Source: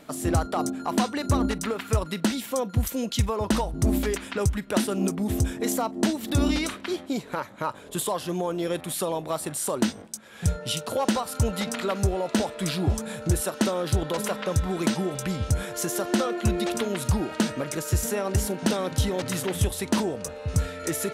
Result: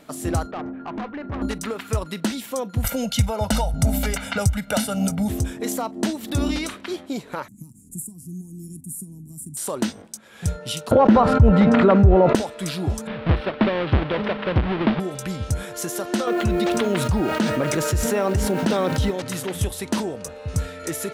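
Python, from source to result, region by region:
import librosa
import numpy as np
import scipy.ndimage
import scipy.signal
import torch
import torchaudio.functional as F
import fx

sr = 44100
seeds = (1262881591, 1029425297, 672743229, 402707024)

y = fx.chain(x, sr, fx.lowpass(hz=2200.0, slope=24),
    fx.tube_stage(drive_db=26.0, bias=0.25), at=(0.51, 1.42))
y = fx.chain(y, sr, fx.peak_eq(hz=13000.0, db=3.0, octaves=1.2),
    fx.comb(ms=1.4, depth=0.98),
    fx.band_squash(depth_pct=70), at=(2.84, 5.29))
y = fx.chain(y, sr, fx.ellip_bandstop(low_hz=230.0, high_hz=7900.0, order=3, stop_db=40),
    fx.band_squash(depth_pct=40), at=(7.48, 9.57))
y = fx.chain(y, sr, fx.lowpass(hz=1700.0, slope=12),
    fx.low_shelf(hz=280.0, db=10.0),
    fx.env_flatten(amount_pct=70), at=(10.91, 12.35))
y = fx.chain(y, sr, fx.halfwave_hold(),
    fx.cheby2_lowpass(hz=6600.0, order=4, stop_db=40), at=(13.07, 15.0))
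y = fx.chain(y, sr, fx.high_shelf(hz=5800.0, db=-12.0),
    fx.quant_dither(seeds[0], bits=10, dither='triangular'),
    fx.env_flatten(amount_pct=70), at=(16.27, 19.11))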